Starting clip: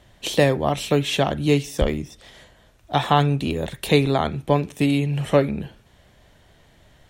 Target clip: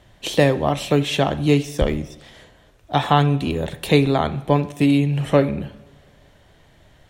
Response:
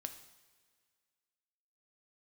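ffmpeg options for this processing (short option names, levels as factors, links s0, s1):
-filter_complex "[0:a]asplit=2[s0][s1];[1:a]atrim=start_sample=2205,highshelf=f=5400:g=-9[s2];[s1][s2]afir=irnorm=-1:irlink=0,volume=1.33[s3];[s0][s3]amix=inputs=2:normalize=0,volume=0.631"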